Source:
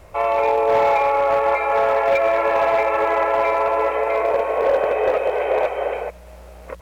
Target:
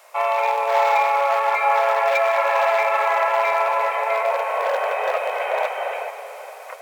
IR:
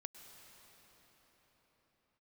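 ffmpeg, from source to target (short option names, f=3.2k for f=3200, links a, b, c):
-filter_complex "[0:a]highpass=f=650:w=0.5412,highpass=f=650:w=1.3066,asplit=2[a][b];[1:a]atrim=start_sample=2205,highshelf=f=3.6k:g=9.5[c];[b][c]afir=irnorm=-1:irlink=0,volume=9dB[d];[a][d]amix=inputs=2:normalize=0,volume=-7dB"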